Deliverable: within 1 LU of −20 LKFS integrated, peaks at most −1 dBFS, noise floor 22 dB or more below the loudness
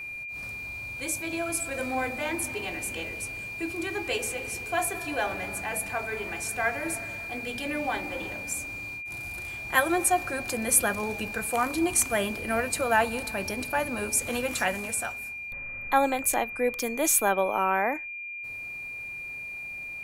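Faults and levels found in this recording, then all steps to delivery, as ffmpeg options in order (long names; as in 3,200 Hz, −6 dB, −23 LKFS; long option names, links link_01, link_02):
interfering tone 2,400 Hz; level of the tone −35 dBFS; integrated loudness −28.5 LKFS; sample peak −7.5 dBFS; target loudness −20.0 LKFS
→ -af "bandreject=frequency=2400:width=30"
-af "volume=8.5dB,alimiter=limit=-1dB:level=0:latency=1"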